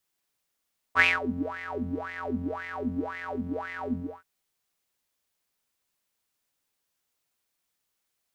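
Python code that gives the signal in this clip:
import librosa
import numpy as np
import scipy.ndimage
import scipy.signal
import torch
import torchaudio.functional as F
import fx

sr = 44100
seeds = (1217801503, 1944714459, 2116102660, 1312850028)

y = fx.sub_patch_wobble(sr, seeds[0], note=41, wave='square', wave2='saw', interval_st=0, level2_db=-9.0, sub_db=-15.0, noise_db=-30.0, kind='bandpass', cutoff_hz=470.0, q=9.7, env_oct=1.0, env_decay_s=0.27, env_sustain_pct=40, attack_ms=49.0, decay_s=0.2, sustain_db=-20, release_s=0.29, note_s=2.99, lfo_hz=1.9, wobble_oct=1.7)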